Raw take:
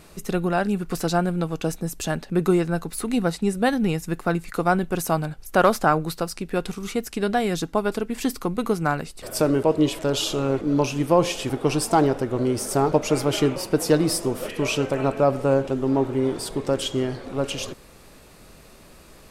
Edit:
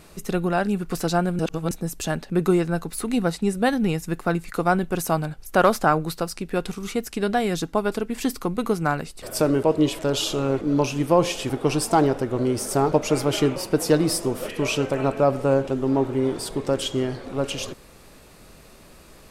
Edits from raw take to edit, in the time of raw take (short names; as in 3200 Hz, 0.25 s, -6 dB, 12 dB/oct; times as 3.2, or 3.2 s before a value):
1.39–1.71 reverse